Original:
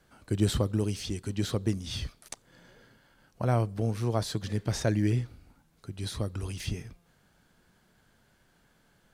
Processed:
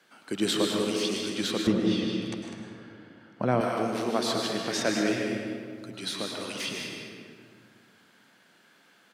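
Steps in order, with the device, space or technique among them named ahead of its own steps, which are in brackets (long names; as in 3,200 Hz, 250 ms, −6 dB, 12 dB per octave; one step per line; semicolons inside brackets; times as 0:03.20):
stadium PA (high-pass filter 200 Hz 24 dB per octave; parametric band 2,700 Hz +8 dB 2.3 octaves; loudspeakers that aren't time-aligned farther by 52 metres −11 dB, 69 metres −9 dB; convolution reverb RT60 2.1 s, pre-delay 96 ms, DRR 1.5 dB)
0:01.67–0:03.61: RIAA equalisation playback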